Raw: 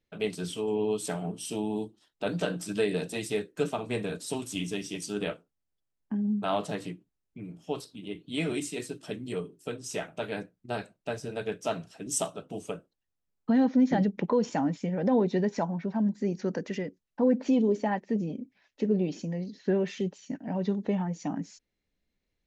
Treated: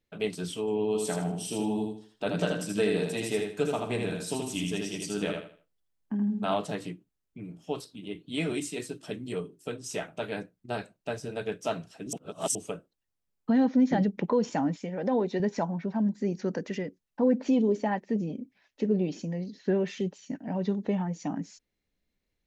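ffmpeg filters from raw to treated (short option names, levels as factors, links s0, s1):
-filter_complex "[0:a]asettb=1/sr,asplit=3[s0][s1][s2];[s0]atrim=end=0.874[s3];[s1]atrim=start=0.87:end=6.54,asetpts=PTS-STARTPTS,afade=t=in:d=0.004:c=qsin,afade=t=out:st=5.666:d=0.004:c=qsin,aecho=1:1:79|158|237|316:0.631|0.189|0.0568|0.017,atrim=end_sample=250047[s4];[s2]atrim=start=6.536[s5];[s3][s4]acrossfade=d=0.004:c1=hsin:c2=qsin[s6];[s6][s5]acrossfade=d=0.004:c1=qsin:c2=hsin,asettb=1/sr,asplit=3[s7][s8][s9];[s7]atrim=end=14.764[s10];[s8]atrim=start=14.76:end=15.4,asetpts=PTS-STARTPTS,afade=t=in:d=0.004:c=qsin,afade=t=out:st=0.636:d=0.004:c=qsin,equalizer=f=79:t=o:w=2.1:g=-14[s11];[s9]atrim=start=15.396[s12];[s10][s11]acrossfade=d=0.004:c1=hsin:c2=qsin[s13];[s13][s12]acrossfade=d=0.004:c1=qsin:c2=hsin,asplit=3[s14][s15][s16];[s14]atrim=end=12.132[s17];[s15]atrim=start=12.128:end=12.552,asetpts=PTS-STARTPTS,areverse[s18];[s16]atrim=start=12.548[s19];[s17][s18]acrossfade=d=0.004:c1=hsin:c2=hsin[s20];[s20][s19]acrossfade=d=0.004:c1=hsin:c2=hsin"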